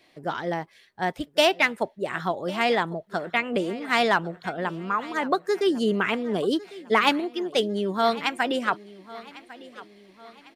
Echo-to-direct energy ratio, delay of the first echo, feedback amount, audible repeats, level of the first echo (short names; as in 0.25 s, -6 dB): -18.0 dB, 1.101 s, 45%, 3, -19.0 dB